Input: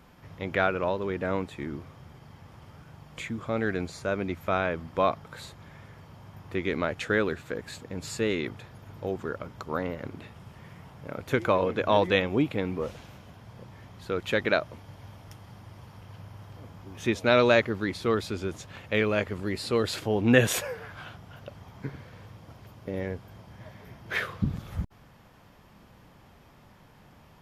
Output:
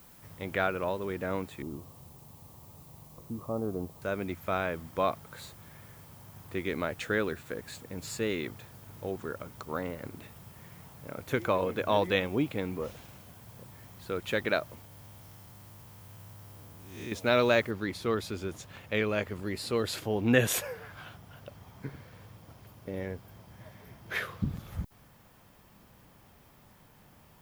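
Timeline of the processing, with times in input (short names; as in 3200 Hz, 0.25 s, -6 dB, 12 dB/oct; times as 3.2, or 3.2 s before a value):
1.62–4.02 steep low-pass 1200 Hz 72 dB/oct
14.85–17.12 time blur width 0.196 s
17.71 noise floor step -60 dB -70 dB
whole clip: high shelf 11000 Hz +11 dB; gain -4 dB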